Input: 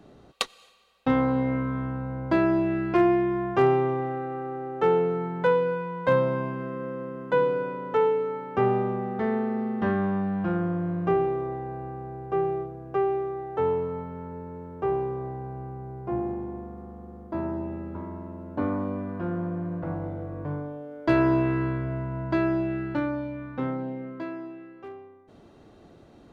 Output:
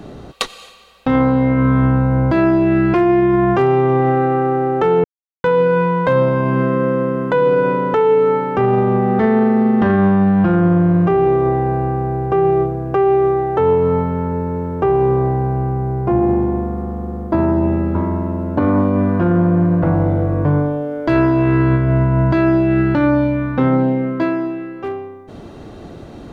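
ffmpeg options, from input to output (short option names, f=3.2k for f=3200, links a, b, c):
-filter_complex "[0:a]asplit=3[a][b][c];[a]atrim=end=5.04,asetpts=PTS-STARTPTS,afade=t=out:st=5.036:d=0.004:c=hsin[d];[b]atrim=start=5.04:end=5.44,asetpts=PTS-STARTPTS,volume=0[e];[c]atrim=start=5.44,asetpts=PTS-STARTPTS,afade=t=in:d=0.004:c=hsin[f];[d][e][f]concat=n=3:v=0:a=1,lowshelf=f=170:g=4.5,alimiter=level_in=22dB:limit=-1dB:release=50:level=0:latency=1,volume=-6dB"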